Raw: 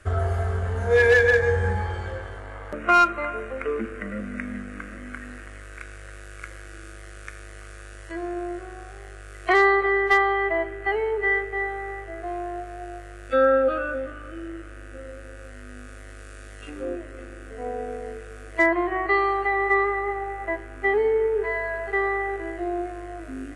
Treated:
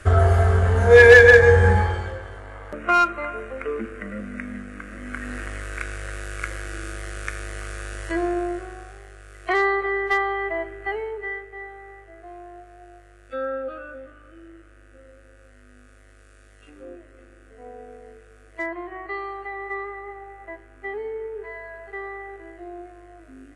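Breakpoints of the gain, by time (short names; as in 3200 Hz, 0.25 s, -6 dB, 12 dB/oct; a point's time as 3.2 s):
1.78 s +8 dB
2.18 s -1 dB
4.83 s -1 dB
5.41 s +8.5 dB
8.12 s +8.5 dB
9.08 s -3 dB
10.9 s -3 dB
11.4 s -10 dB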